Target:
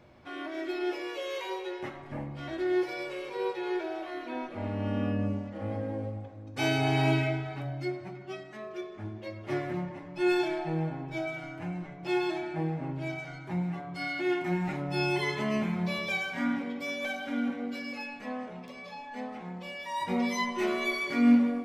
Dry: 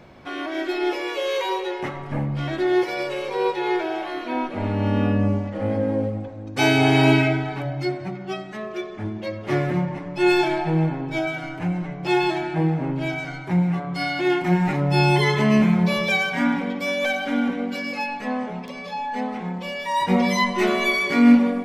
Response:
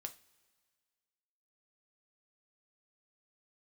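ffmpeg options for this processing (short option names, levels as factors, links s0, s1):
-filter_complex "[1:a]atrim=start_sample=2205[s0];[0:a][s0]afir=irnorm=-1:irlink=0,volume=0.501"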